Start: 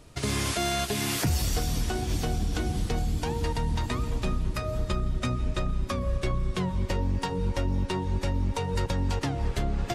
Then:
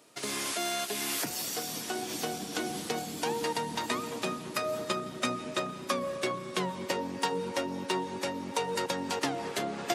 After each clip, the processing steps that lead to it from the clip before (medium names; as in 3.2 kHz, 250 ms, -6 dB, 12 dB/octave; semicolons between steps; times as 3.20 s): Bessel high-pass 310 Hz, order 4; treble shelf 10 kHz +6.5 dB; gain riding 2 s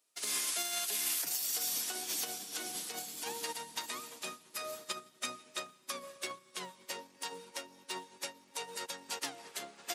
tilt EQ +3.5 dB/octave; peak limiter -20.5 dBFS, peak gain reduction 10.5 dB; upward expansion 2.5:1, over -43 dBFS; trim -3 dB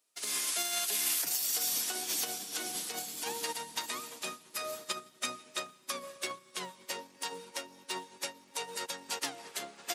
level rider gain up to 3 dB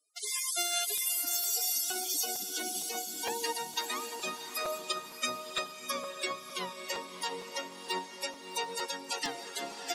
loudest bins only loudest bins 64; echo that smears into a reverb 657 ms, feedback 48%, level -8.5 dB; crackling interface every 0.46 s, samples 256, repeat, from 0.97 s; trim +4 dB